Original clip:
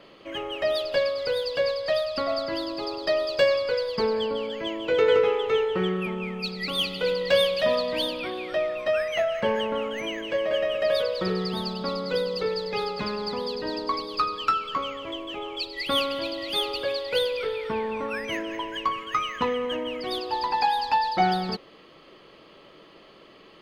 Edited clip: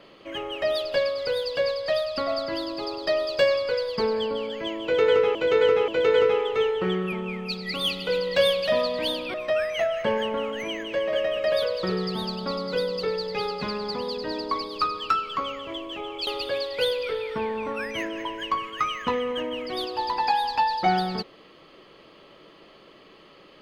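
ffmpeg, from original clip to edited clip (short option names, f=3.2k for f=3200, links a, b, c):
-filter_complex "[0:a]asplit=5[a][b][c][d][e];[a]atrim=end=5.352[f];[b]atrim=start=4.818:end=5.352[g];[c]atrim=start=4.818:end=8.282[h];[d]atrim=start=8.718:end=15.652[i];[e]atrim=start=16.608[j];[f][g]acrossfade=d=0.004:c1=hsin:c2=hsin[k];[k][h]acrossfade=d=0.004:c1=hsin:c2=hsin[l];[l][i]acrossfade=d=0.004:c1=hsin:c2=hsin[m];[m][j]acrossfade=d=0.004:c1=hsin:c2=hsin"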